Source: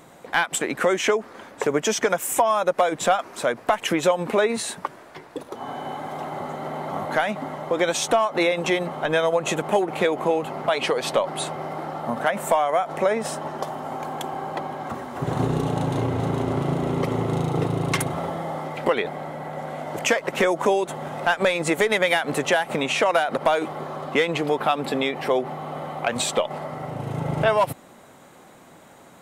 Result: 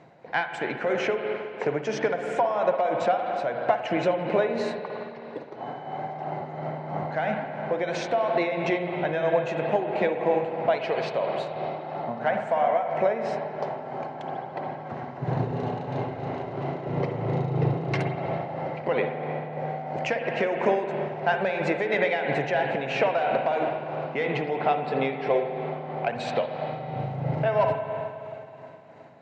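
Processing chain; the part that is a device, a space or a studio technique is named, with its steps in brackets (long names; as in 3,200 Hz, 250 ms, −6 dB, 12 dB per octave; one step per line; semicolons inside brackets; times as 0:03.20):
0:15.56–0:16.86: low-shelf EQ 280 Hz −10 dB
combo amplifier with spring reverb and tremolo (spring reverb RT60 2.9 s, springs 52/56 ms, chirp 30 ms, DRR 3 dB; amplitude tremolo 3 Hz, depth 45%; loudspeaker in its box 91–4,400 Hz, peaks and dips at 130 Hz +7 dB, 270 Hz −4 dB, 680 Hz +4 dB, 1,200 Hz −8 dB, 3,400 Hz −10 dB)
level −3 dB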